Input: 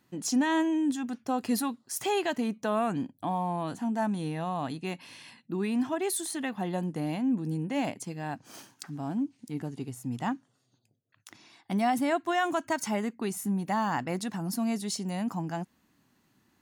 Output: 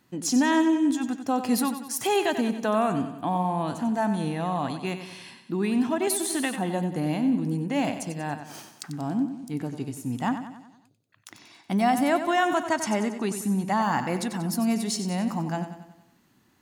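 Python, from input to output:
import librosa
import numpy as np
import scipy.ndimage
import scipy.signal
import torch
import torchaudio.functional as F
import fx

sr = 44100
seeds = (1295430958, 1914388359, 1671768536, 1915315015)

y = fx.lowpass(x, sr, hz=11000.0, slope=12, at=(12.58, 13.82))
y = fx.echo_feedback(y, sr, ms=93, feedback_pct=52, wet_db=-10.0)
y = fx.band_squash(y, sr, depth_pct=100, at=(6.07, 6.56))
y = y * 10.0 ** (4.0 / 20.0)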